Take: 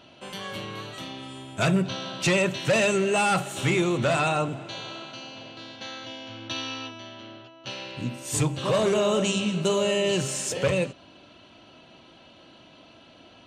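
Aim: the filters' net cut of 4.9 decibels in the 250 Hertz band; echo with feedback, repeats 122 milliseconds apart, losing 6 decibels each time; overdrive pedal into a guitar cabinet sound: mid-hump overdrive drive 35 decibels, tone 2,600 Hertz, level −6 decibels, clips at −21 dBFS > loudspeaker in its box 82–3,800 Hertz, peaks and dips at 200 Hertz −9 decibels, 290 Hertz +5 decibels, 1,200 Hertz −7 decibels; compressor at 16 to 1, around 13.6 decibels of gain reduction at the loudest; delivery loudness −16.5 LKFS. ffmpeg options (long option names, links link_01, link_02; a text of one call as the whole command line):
ffmpeg -i in.wav -filter_complex "[0:a]equalizer=frequency=250:width_type=o:gain=-4.5,acompressor=threshold=-33dB:ratio=16,aecho=1:1:122|244|366|488|610|732:0.501|0.251|0.125|0.0626|0.0313|0.0157,asplit=2[link_01][link_02];[link_02]highpass=frequency=720:poles=1,volume=35dB,asoftclip=type=tanh:threshold=-21dB[link_03];[link_01][link_03]amix=inputs=2:normalize=0,lowpass=frequency=2600:poles=1,volume=-6dB,highpass=82,equalizer=frequency=200:width_type=q:width=4:gain=-9,equalizer=frequency=290:width_type=q:width=4:gain=5,equalizer=frequency=1200:width_type=q:width=4:gain=-7,lowpass=frequency=3800:width=0.5412,lowpass=frequency=3800:width=1.3066,volume=13dB" out.wav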